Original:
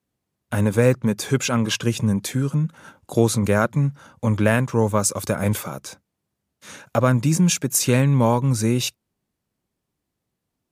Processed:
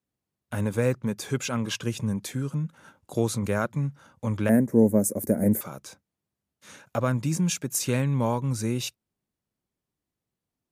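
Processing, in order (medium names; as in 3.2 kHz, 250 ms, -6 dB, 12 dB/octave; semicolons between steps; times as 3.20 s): 4.49–5.61 s: FFT filter 150 Hz 0 dB, 220 Hz +13 dB, 650 Hz +4 dB, 1.2 kHz -17 dB, 1.9 kHz -1 dB, 2.9 kHz -26 dB, 12 kHz +10 dB; trim -7.5 dB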